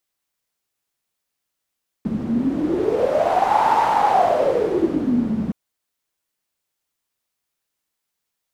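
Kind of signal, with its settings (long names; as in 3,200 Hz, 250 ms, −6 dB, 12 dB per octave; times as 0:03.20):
wind from filtered noise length 3.47 s, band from 210 Hz, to 890 Hz, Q 9, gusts 1, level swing 5 dB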